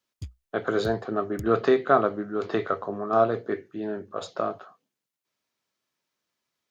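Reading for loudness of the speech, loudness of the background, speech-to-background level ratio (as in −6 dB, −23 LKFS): −26.5 LKFS, −44.0 LKFS, 17.5 dB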